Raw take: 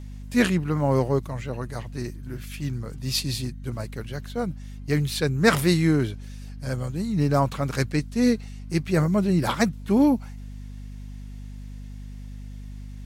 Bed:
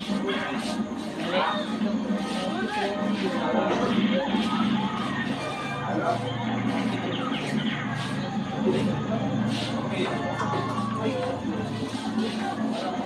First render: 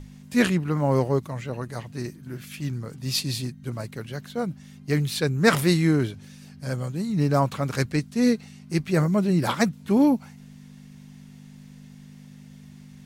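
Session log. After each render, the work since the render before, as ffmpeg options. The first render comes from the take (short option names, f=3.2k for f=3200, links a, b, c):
-af "bandreject=f=50:t=h:w=6,bandreject=f=100:t=h:w=6"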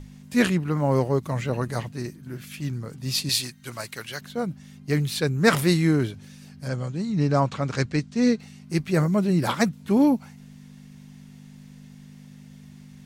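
-filter_complex "[0:a]asettb=1/sr,asplit=3[a][b][c];[a]atrim=end=1.264[d];[b]atrim=start=1.26:end=1.89,asetpts=PTS-STARTPTS,afade=t=in:d=0.004:c=qsin,afade=t=out:st=0.626:d=0.004:c=qsin,acontrast=34[e];[c]atrim=start=1.886[f];[d][e]acrossfade=d=0.004:c1=hsin:c2=qsin[g];[g][f]acrossfade=d=0.004:c1=qsin:c2=hsin,asettb=1/sr,asplit=3[h][i][j];[h]atrim=end=3.294[k];[i]atrim=start=3.29:end=4.21,asetpts=PTS-STARTPTS,afade=t=in:d=0.004:c=qsin,afade=t=out:st=0.916:d=0.004:c=qsin,tiltshelf=f=660:g=-9.5[l];[j]atrim=start=4.206[m];[k][l]acrossfade=d=0.004:c1=hsin:c2=qsin[n];[n][m]acrossfade=d=0.004:c1=qsin:c2=hsin,asettb=1/sr,asplit=3[o][p][q];[o]atrim=end=6.684[r];[p]atrim=start=6.68:end=8.4,asetpts=PTS-STARTPTS,afade=t=in:d=0.004:c=qsin,afade=t=out:st=1.716:d=0.004:c=qsin,lowpass=f=7.5k:w=0.5412,lowpass=f=7.5k:w=1.3066[s];[q]atrim=start=8.396[t];[r][s]acrossfade=d=0.004:c1=hsin:c2=qsin[u];[u][t]acrossfade=d=0.004:c1=qsin:c2=hsin"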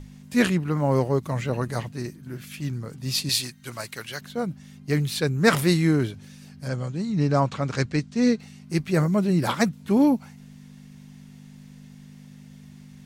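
-af anull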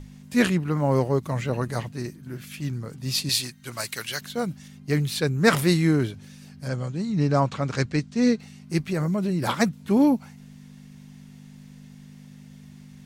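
-filter_complex "[0:a]asettb=1/sr,asplit=3[a][b][c];[a]atrim=end=3.774[d];[b]atrim=start=3.77:end=4.68,asetpts=PTS-STARTPTS,afade=t=in:d=0.004:c=qsin,afade=t=out:st=0.906:d=0.004:c=qsin,highshelf=f=2.1k:g=7.5[e];[c]atrim=start=4.676[f];[d][e]acrossfade=d=0.004:c1=hsin:c2=qsin[g];[g][f]acrossfade=d=0.004:c1=qsin:c2=hsin,asettb=1/sr,asplit=3[h][i][j];[h]atrim=end=8.794[k];[i]atrim=start=8.79:end=9.46,asetpts=PTS-STARTPTS,afade=t=in:d=0.004:c=qsin,afade=t=out:st=0.666:d=0.004:c=qsin,acompressor=threshold=-21dB:ratio=6:attack=3.2:release=140:knee=1:detection=peak[l];[j]atrim=start=9.456[m];[k][l]acrossfade=d=0.004:c1=hsin:c2=qsin[n];[n][m]acrossfade=d=0.004:c1=qsin:c2=hsin"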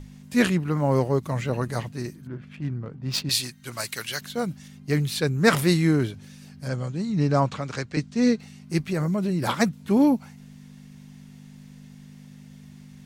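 -filter_complex "[0:a]asettb=1/sr,asplit=3[a][b][c];[a]atrim=end=2.274[d];[b]atrim=start=2.27:end=3.31,asetpts=PTS-STARTPTS,afade=t=in:d=0.004:c=qsin,afade=t=out:st=1.036:d=0.004:c=qsin,adynamicsmooth=sensitivity=4:basefreq=1.3k[e];[c]atrim=start=3.306[f];[d][e]acrossfade=d=0.004:c1=hsin:c2=qsin[g];[g][f]acrossfade=d=0.004:c1=qsin:c2=hsin,asettb=1/sr,asplit=3[h][i][j];[h]atrim=end=7.554[k];[i]atrim=start=7.55:end=7.97,asetpts=PTS-STARTPTS,afade=t=in:d=0.004:c=qsin,afade=t=out:st=0.416:d=0.004:c=qsin,acrossover=split=390|1900[l][m][n];[l]acompressor=threshold=-32dB:ratio=4[o];[m]acompressor=threshold=-32dB:ratio=4[p];[n]acompressor=threshold=-36dB:ratio=4[q];[o][p][q]amix=inputs=3:normalize=0[r];[j]atrim=start=7.966[s];[k][r]acrossfade=d=0.004:c1=hsin:c2=qsin[t];[t][s]acrossfade=d=0.004:c1=qsin:c2=hsin"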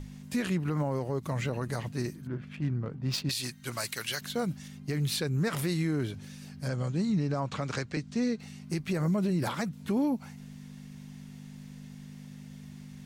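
-af "acompressor=threshold=-23dB:ratio=4,alimiter=limit=-21.5dB:level=0:latency=1:release=107"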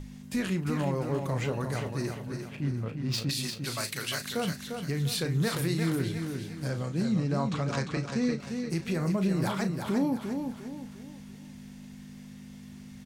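-filter_complex "[0:a]asplit=2[a][b];[b]adelay=36,volume=-10dB[c];[a][c]amix=inputs=2:normalize=0,asplit=2[d][e];[e]aecho=0:1:349|698|1047|1396|1745:0.501|0.195|0.0762|0.0297|0.0116[f];[d][f]amix=inputs=2:normalize=0"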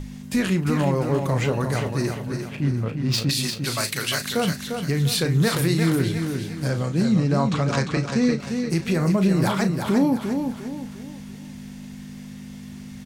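-af "volume=8dB"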